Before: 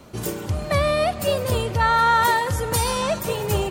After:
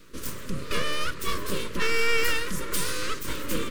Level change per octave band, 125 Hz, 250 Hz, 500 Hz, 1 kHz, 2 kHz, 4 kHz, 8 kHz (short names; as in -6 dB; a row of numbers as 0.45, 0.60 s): -13.5, -4.5, -10.0, -15.0, -2.5, -2.0, -3.5 dB